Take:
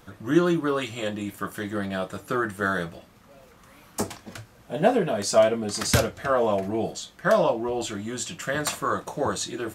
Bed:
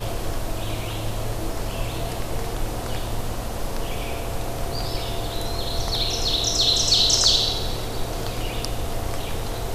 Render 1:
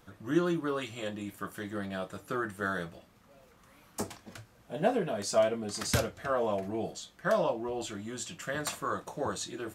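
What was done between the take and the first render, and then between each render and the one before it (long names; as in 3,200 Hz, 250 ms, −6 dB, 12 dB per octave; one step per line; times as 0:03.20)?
level −7.5 dB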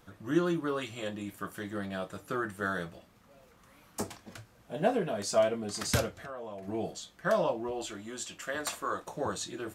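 0:06.14–0:06.68: downward compressor 3 to 1, threshold −42 dBFS
0:07.71–0:09.08: parametric band 140 Hz −14.5 dB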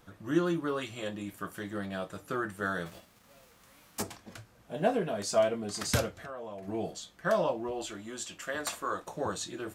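0:02.85–0:04.01: spectral envelope flattened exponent 0.6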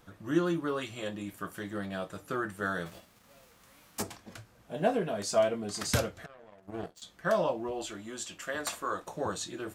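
0:06.26–0:07.02: power curve on the samples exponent 2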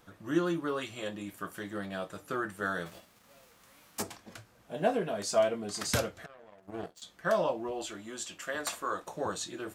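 low-shelf EQ 160 Hz −5.5 dB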